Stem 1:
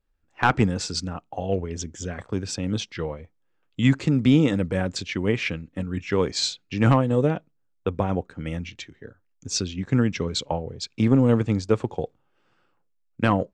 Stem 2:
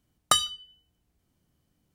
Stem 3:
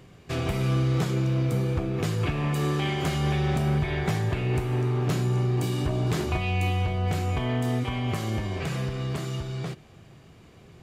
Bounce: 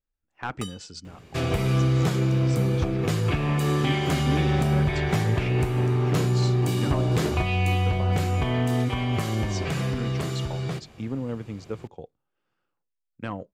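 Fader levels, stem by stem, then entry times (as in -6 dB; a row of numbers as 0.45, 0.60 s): -12.5, -17.5, +2.5 dB; 0.00, 0.30, 1.05 s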